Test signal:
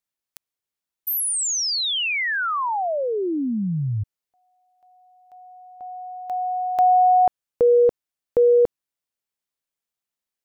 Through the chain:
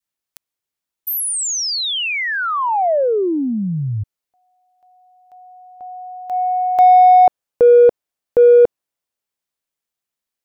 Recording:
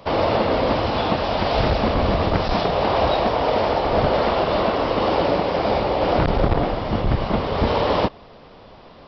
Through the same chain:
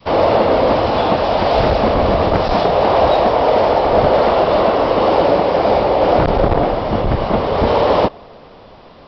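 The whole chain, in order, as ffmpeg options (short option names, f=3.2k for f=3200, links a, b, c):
-filter_complex "[0:a]adynamicequalizer=threshold=0.0355:dfrequency=600:dqfactor=0.7:tfrequency=600:tqfactor=0.7:attack=5:release=100:ratio=0.417:range=3:mode=boostabove:tftype=bell,asplit=2[a][b];[b]asoftclip=type=tanh:threshold=-14.5dB,volume=-9dB[c];[a][c]amix=inputs=2:normalize=0"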